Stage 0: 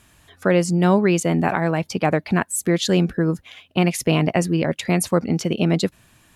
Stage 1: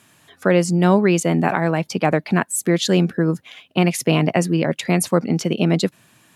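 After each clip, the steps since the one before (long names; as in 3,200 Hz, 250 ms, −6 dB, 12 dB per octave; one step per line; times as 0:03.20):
high-pass filter 120 Hz 24 dB per octave
level +1.5 dB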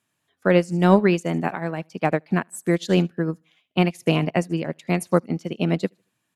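repeating echo 76 ms, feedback 41%, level −21 dB
expander for the loud parts 2.5 to 1, over −27 dBFS
level +1.5 dB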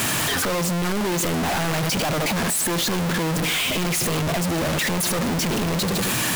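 sign of each sample alone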